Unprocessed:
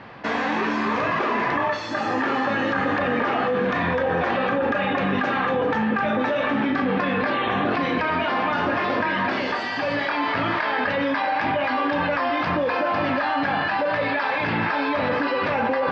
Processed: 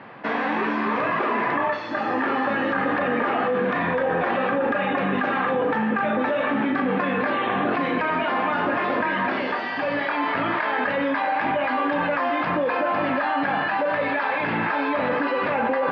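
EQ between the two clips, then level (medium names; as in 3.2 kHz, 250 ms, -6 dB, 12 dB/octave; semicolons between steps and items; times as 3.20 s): band-pass 150–2900 Hz; 0.0 dB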